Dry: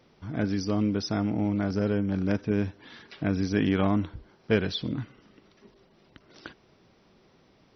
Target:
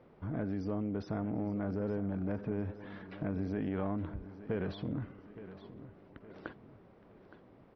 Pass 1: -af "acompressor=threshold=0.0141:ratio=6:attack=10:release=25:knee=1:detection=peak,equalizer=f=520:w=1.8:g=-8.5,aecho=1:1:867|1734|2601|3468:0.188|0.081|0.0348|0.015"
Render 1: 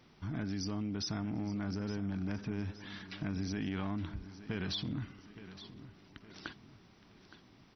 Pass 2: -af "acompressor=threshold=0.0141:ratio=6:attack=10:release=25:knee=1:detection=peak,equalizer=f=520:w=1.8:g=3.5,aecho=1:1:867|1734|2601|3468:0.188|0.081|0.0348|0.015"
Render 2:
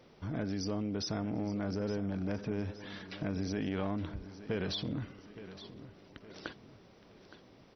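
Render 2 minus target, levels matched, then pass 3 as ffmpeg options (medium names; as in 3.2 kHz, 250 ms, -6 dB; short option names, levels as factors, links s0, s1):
2 kHz band +3.5 dB
-af "acompressor=threshold=0.0141:ratio=6:attack=10:release=25:knee=1:detection=peak,lowpass=1600,equalizer=f=520:w=1.8:g=3.5,aecho=1:1:867|1734|2601|3468:0.188|0.081|0.0348|0.015"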